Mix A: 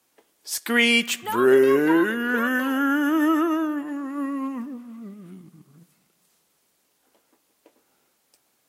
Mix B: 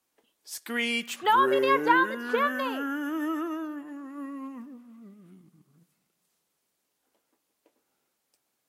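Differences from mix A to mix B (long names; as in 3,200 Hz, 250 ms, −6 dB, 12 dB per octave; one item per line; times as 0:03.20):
speech +7.0 dB
background −10.0 dB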